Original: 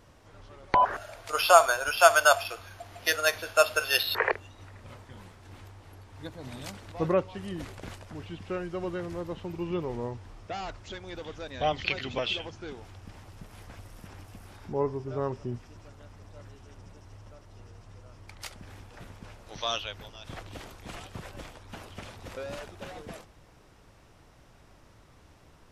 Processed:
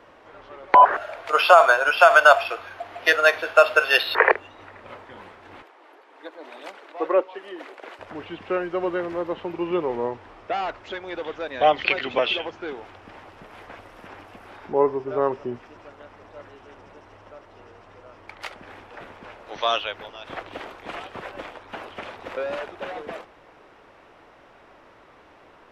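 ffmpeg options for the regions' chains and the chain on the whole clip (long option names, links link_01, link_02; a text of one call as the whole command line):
ffmpeg -i in.wav -filter_complex "[0:a]asettb=1/sr,asplit=3[link_01][link_02][link_03];[link_01]atrim=end=5.624[link_04];[link_02]atrim=start=5.62:end=7.99,asetpts=PTS-STARTPTS,afade=type=in:duration=0.004:curve=qsin,afade=type=out:start_time=2.366:duration=0.004:curve=qsin,highpass=frequency=310:width=0.5412,highpass=frequency=310:width=1.3066,flanger=delay=0.1:depth=3.3:regen=65:speed=1.9:shape=sinusoidal[link_05];[link_03]atrim=start=7.986[link_06];[link_04][link_05]acrossfade=duration=0.004:curve1=hsin:curve2=qsin[link_07];[link_07][link_06]acrossfade=duration=0.004:curve1=qsin:curve2=hsin,acrossover=split=290 3200:gain=0.112 1 0.112[link_08][link_09][link_10];[link_08][link_09][link_10]amix=inputs=3:normalize=0,alimiter=level_in=11.5dB:limit=-1dB:release=50:level=0:latency=1,volume=-1dB" out.wav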